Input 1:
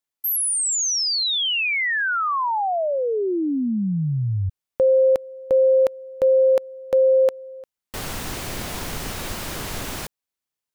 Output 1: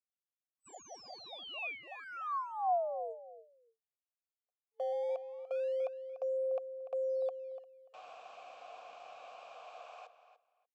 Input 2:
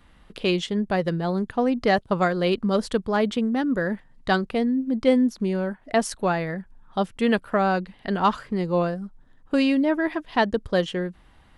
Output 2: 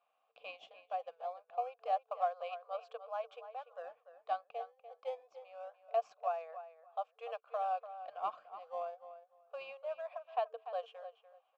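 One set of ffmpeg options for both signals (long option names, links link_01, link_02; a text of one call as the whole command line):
ffmpeg -i in.wav -filter_complex "[0:a]afftfilt=real='re*between(b*sr/4096,450,8000)':imag='im*between(b*sr/4096,450,8000)':win_size=4096:overlap=0.75,asplit=2[link_01][link_02];[link_02]acrusher=samples=19:mix=1:aa=0.000001:lfo=1:lforange=30.4:lforate=0.26,volume=-11.5dB[link_03];[link_01][link_03]amix=inputs=2:normalize=0,asplit=3[link_04][link_05][link_06];[link_04]bandpass=frequency=730:width_type=q:width=8,volume=0dB[link_07];[link_05]bandpass=frequency=1090:width_type=q:width=8,volume=-6dB[link_08];[link_06]bandpass=frequency=2440:width_type=q:width=8,volume=-9dB[link_09];[link_07][link_08][link_09]amix=inputs=3:normalize=0,asplit=2[link_10][link_11];[link_11]adelay=293,lowpass=frequency=4200:poles=1,volume=-12dB,asplit=2[link_12][link_13];[link_13]adelay=293,lowpass=frequency=4200:poles=1,volume=0.18[link_14];[link_10][link_12][link_14]amix=inputs=3:normalize=0,volume=-8dB" out.wav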